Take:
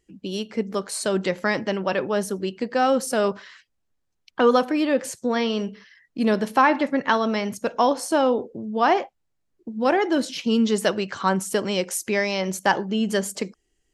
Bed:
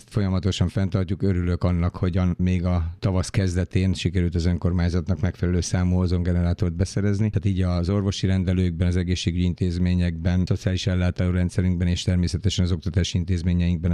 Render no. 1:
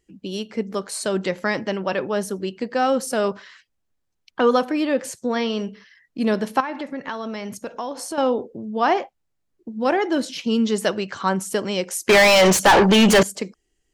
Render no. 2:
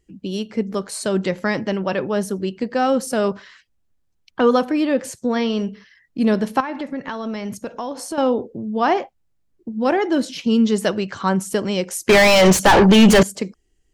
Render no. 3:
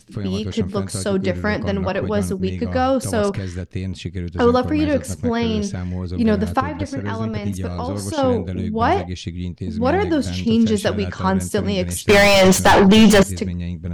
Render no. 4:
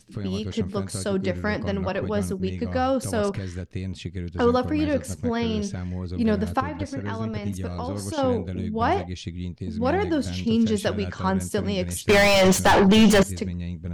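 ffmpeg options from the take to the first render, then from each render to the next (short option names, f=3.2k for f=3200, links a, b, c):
-filter_complex "[0:a]asettb=1/sr,asplit=3[a][b][c];[a]atrim=end=6.604[d];[b]atrim=start=6.6:end=8.18,asetpts=PTS-STARTPTS,afade=t=in:d=0.004:c=qsin,afade=t=out:st=1.576:d=0.004:c=qsin,acompressor=threshold=-28dB:ratio=3:attack=3.2:release=140:knee=1:detection=peak[e];[c]atrim=start=8.176[f];[d][e]acrossfade=d=0.004:c1=hsin:c2=qsin[g];[g][f]acrossfade=d=0.004:c1=qsin:c2=hsin,asettb=1/sr,asplit=3[h][i][j];[h]atrim=end=12.094[k];[i]atrim=start=12.09:end=13.23,asetpts=PTS-STARTPTS,afade=t=in:d=0.004:c=qsin,afade=t=out:st=1.136:d=0.004:c=qsin,asplit=2[l][m];[m]highpass=f=720:p=1,volume=35dB,asoftclip=type=tanh:threshold=-5.5dB[n];[l][n]amix=inputs=2:normalize=0,lowpass=f=3.7k:p=1,volume=-6dB[o];[j]atrim=start=13.226[p];[k][o]acrossfade=d=0.004:c1=hsin:c2=qsin[q];[q][p]acrossfade=d=0.004:c1=qsin:c2=hsin"
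-af "lowshelf=f=230:g=8.5"
-filter_complex "[1:a]volume=-5dB[a];[0:a][a]amix=inputs=2:normalize=0"
-af "volume=-5dB"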